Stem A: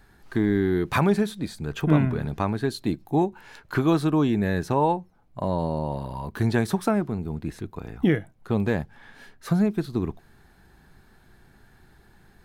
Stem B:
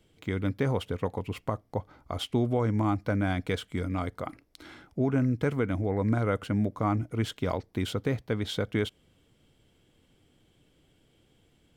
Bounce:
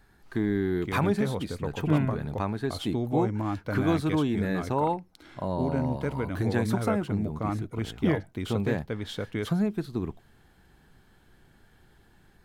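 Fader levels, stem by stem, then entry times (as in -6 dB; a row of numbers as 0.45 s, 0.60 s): -4.5 dB, -3.5 dB; 0.00 s, 0.60 s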